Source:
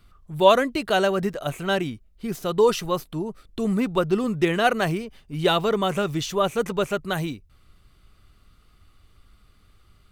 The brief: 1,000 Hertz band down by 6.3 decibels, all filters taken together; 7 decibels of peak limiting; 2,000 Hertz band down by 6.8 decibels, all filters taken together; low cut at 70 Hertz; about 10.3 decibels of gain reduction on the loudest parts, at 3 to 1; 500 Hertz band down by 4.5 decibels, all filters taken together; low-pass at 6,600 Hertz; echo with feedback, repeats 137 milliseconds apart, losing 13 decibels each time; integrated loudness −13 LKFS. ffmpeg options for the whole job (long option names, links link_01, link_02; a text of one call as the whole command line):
ffmpeg -i in.wav -af "highpass=70,lowpass=6600,equalizer=frequency=500:width_type=o:gain=-4,equalizer=frequency=1000:width_type=o:gain=-5,equalizer=frequency=2000:width_type=o:gain=-7.5,acompressor=threshold=-31dB:ratio=3,alimiter=level_in=2.5dB:limit=-24dB:level=0:latency=1,volume=-2.5dB,aecho=1:1:137|274|411:0.224|0.0493|0.0108,volume=23dB" out.wav